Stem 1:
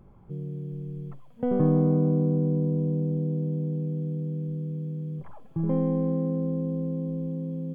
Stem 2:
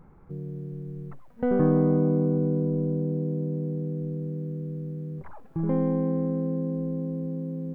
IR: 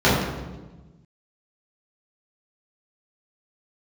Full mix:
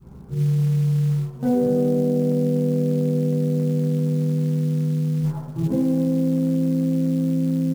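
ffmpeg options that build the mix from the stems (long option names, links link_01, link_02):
-filter_complex "[0:a]acompressor=threshold=-37dB:ratio=2,equalizer=frequency=500:width=0.43:gain=-2,volume=-1.5dB,asplit=2[link_01][link_02];[link_02]volume=-17.5dB[link_03];[1:a]volume=-1,adelay=11,volume=-16dB,asplit=2[link_04][link_05];[link_05]volume=-6dB[link_06];[2:a]atrim=start_sample=2205[link_07];[link_03][link_06]amix=inputs=2:normalize=0[link_08];[link_08][link_07]afir=irnorm=-1:irlink=0[link_09];[link_01][link_04][link_09]amix=inputs=3:normalize=0,acrusher=bits=7:mode=log:mix=0:aa=0.000001,adynamicequalizer=threshold=0.0355:dfrequency=580:dqfactor=1.2:tfrequency=580:tqfactor=1.2:attack=5:release=100:ratio=0.375:range=3.5:mode=boostabove:tftype=bell,acompressor=threshold=-18dB:ratio=5"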